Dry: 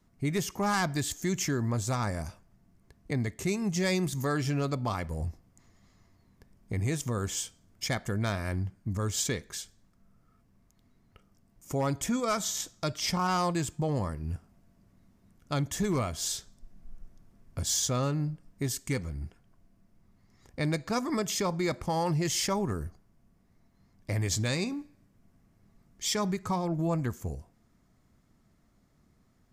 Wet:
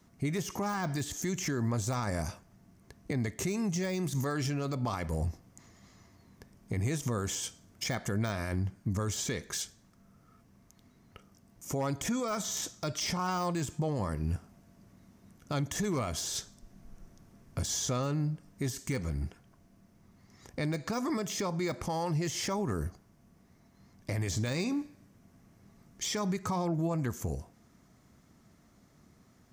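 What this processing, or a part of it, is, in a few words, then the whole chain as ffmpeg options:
broadcast voice chain: -af "highpass=f=91:p=1,deesser=0.85,acompressor=threshold=-33dB:ratio=6,equalizer=f=6k:t=o:w=0.22:g=4.5,alimiter=level_in=6.5dB:limit=-24dB:level=0:latency=1:release=20,volume=-6.5dB,volume=6.5dB"

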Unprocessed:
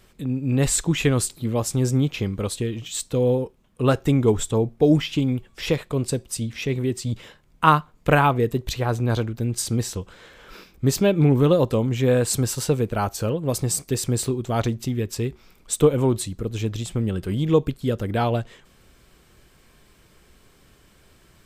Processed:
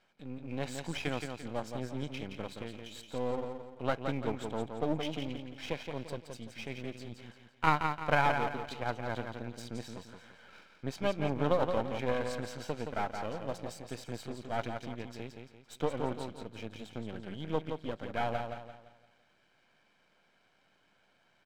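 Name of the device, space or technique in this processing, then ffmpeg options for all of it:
crystal radio: -filter_complex "[0:a]asettb=1/sr,asplit=3[a][b][c];[a]atrim=end=11.404[d];[b]atrim=start=11.4:end=12.11,asetpts=PTS-STARTPTS,afade=t=in:d=0.004:c=qsin,afade=t=out:st=0.706:d=0.004:c=qsin,equalizer=f=930:w=0.66:g=4[e];[c]atrim=start=12.106[f];[d][e]acrossfade=d=0.004:c1=hsin:c2=qsin[g];[g][f]acrossfade=d=0.004:c1=qsin:c2=hsin,highpass=290,lowpass=3.2k,aecho=1:1:1.3:0.6,aecho=1:1:171|342|513|684|855:0.501|0.19|0.0724|0.0275|0.0105,aeval=exprs='if(lt(val(0),0),0.251*val(0),val(0))':c=same,volume=-8dB"

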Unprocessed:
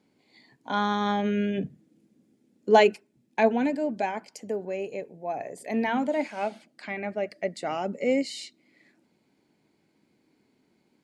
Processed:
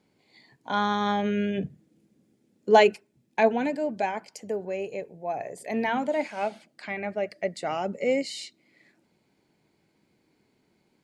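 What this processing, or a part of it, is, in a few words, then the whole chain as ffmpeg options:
low shelf boost with a cut just above: -af "lowshelf=f=85:g=6.5,equalizer=f=260:t=o:w=0.64:g=-5.5,volume=1dB"

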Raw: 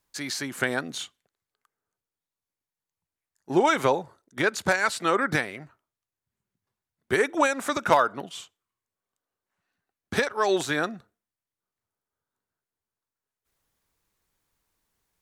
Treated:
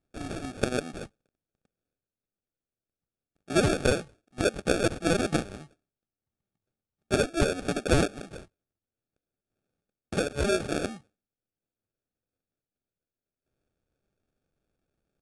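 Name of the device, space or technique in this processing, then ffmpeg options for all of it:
crushed at another speed: -af "asetrate=88200,aresample=44100,acrusher=samples=22:mix=1:aa=0.000001,asetrate=22050,aresample=44100,volume=-2.5dB"

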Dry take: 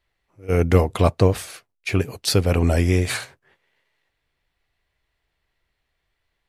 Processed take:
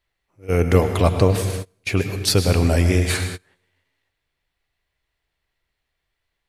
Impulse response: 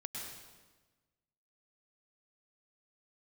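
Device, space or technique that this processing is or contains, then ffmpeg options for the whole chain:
keyed gated reverb: -filter_complex "[0:a]highshelf=f=2.8k:g=3,asplit=3[a][b][c];[1:a]atrim=start_sample=2205[d];[b][d]afir=irnorm=-1:irlink=0[e];[c]apad=whole_len=285863[f];[e][f]sidechaingate=range=-28dB:threshold=-43dB:ratio=16:detection=peak,volume=-1dB[g];[a][g]amix=inputs=2:normalize=0,volume=-3.5dB"

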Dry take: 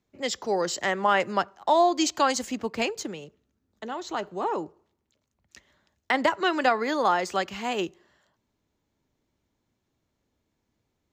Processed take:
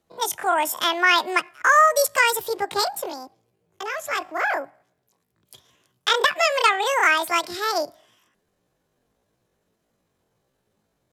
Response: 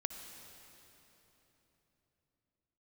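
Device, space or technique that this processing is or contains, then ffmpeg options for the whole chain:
chipmunk voice: -af "asetrate=78577,aresample=44100,atempo=0.561231,volume=5dB"

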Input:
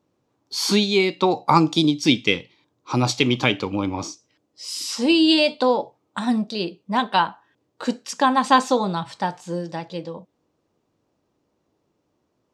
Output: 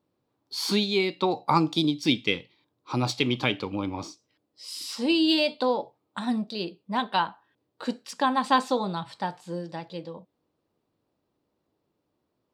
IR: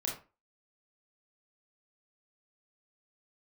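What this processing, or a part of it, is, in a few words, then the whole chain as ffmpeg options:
exciter from parts: -filter_complex "[0:a]asplit=2[a][b];[b]highpass=f=4.5k:w=0.5412,highpass=f=4.5k:w=1.3066,asoftclip=type=tanh:threshold=-24.5dB,highpass=f=2.9k:w=0.5412,highpass=f=2.9k:w=1.3066,volume=-5dB[c];[a][c]amix=inputs=2:normalize=0,volume=-6dB"

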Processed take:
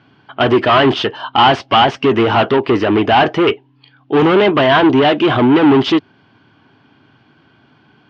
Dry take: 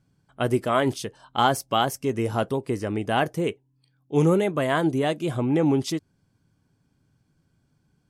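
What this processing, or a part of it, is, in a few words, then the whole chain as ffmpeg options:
overdrive pedal into a guitar cabinet: -filter_complex "[0:a]asplit=2[a][b];[b]highpass=f=720:p=1,volume=29dB,asoftclip=type=tanh:threshold=-7.5dB[c];[a][c]amix=inputs=2:normalize=0,lowpass=f=1.3k:p=1,volume=-6dB,highpass=100,equalizer=f=170:t=q:w=4:g=-9,equalizer=f=520:t=q:w=4:g=-9,equalizer=f=3k:t=q:w=4:g=8,lowpass=f=4.2k:w=0.5412,lowpass=f=4.2k:w=1.3066,volume=7dB"

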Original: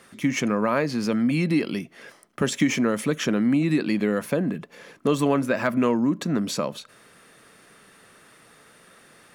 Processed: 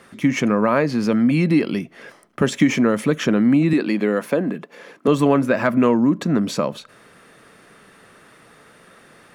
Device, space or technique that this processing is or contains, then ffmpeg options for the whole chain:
behind a face mask: -filter_complex "[0:a]asettb=1/sr,asplit=3[a][b][c];[a]atrim=end=3.734[d];[b]atrim=start=3.73:end=5.08,asetpts=PTS-STARTPTS,afade=t=in:d=0.004:c=qsin,afade=t=out:st=1.346:d=0.004:c=qsin,highpass=230[e];[c]atrim=start=5.076[f];[d][e]acrossfade=d=0.004:c1=hsin:c2=qsin[g];[g][f]acrossfade=d=0.004:c1=qsin:c2=hsin,highshelf=f=3.3k:g=-7.5,volume=5.5dB"

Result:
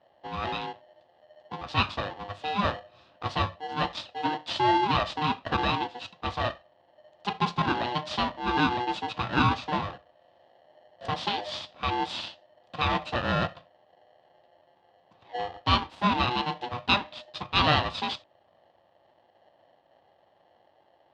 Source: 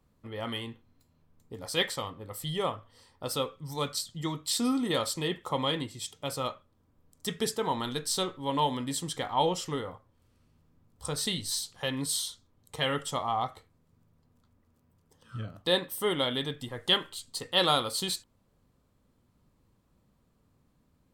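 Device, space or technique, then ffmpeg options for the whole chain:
ring modulator pedal into a guitar cabinet: -af "aeval=exprs='val(0)*sgn(sin(2*PI*610*n/s))':c=same,highpass=80,equalizer=f=94:t=q:w=4:g=6,equalizer=f=430:t=q:w=4:g=-9,equalizer=f=600:t=q:w=4:g=5,equalizer=f=900:t=q:w=4:g=3,equalizer=f=1.5k:t=q:w=4:g=-5,equalizer=f=2.2k:t=q:w=4:g=-8,lowpass=f=3.6k:w=0.5412,lowpass=f=3.6k:w=1.3066,volume=5dB"

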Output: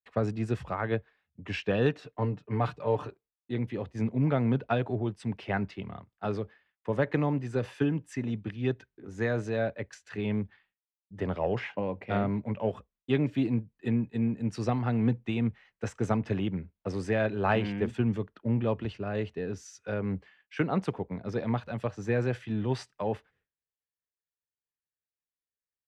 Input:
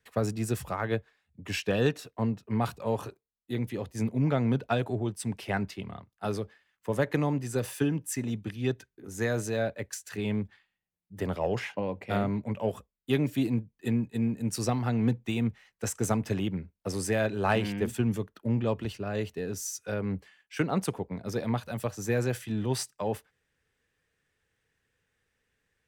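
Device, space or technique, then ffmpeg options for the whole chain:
hearing-loss simulation: -filter_complex "[0:a]asettb=1/sr,asplit=3[a][b][c];[a]atrim=end=2.024[d];[b]atrim=start=2.02:end=3.07,asetpts=PTS-STARTPTS,afade=t=in:d=0.004:c=qsin,afade=t=out:st=1.046:d=0.004:c=qsin,aecho=1:1:6.7:0.54,atrim=end_sample=46305[e];[c]atrim=start=3.066[f];[d][e]acrossfade=d=0.004:c1=hsin:c2=qsin[g];[g][f]acrossfade=d=0.004:c1=qsin:c2=hsin,lowpass=3.1k,agate=range=-33dB:threshold=-60dB:ratio=3:detection=peak"

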